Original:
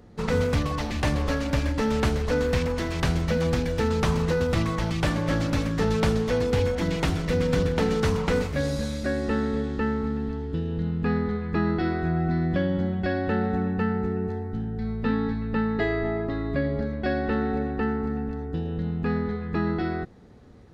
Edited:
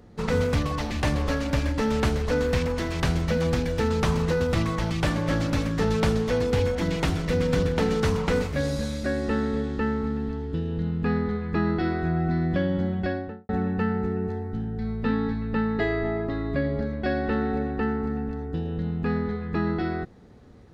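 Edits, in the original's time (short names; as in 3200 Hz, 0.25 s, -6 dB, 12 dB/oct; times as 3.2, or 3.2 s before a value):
12.98–13.49 studio fade out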